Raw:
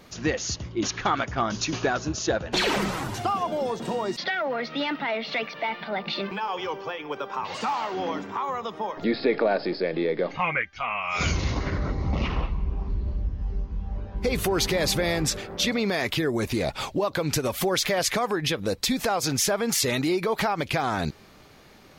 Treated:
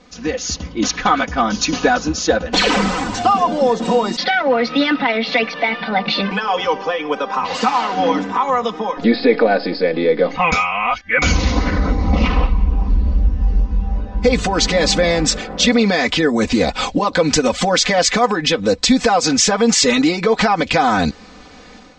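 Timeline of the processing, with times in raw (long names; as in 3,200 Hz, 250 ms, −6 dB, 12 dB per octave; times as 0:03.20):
0:10.52–0:11.22: reverse
whole clip: Chebyshev low-pass filter 7,800 Hz, order 5; comb filter 4 ms, depth 93%; automatic gain control gain up to 10 dB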